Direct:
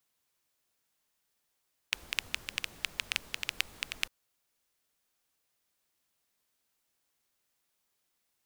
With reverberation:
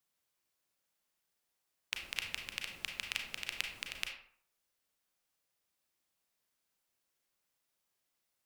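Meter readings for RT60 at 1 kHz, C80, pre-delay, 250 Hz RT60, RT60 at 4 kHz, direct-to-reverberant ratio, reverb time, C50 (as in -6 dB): 0.60 s, 9.5 dB, 32 ms, 0.55 s, 0.35 s, 2.5 dB, 0.55 s, 5.5 dB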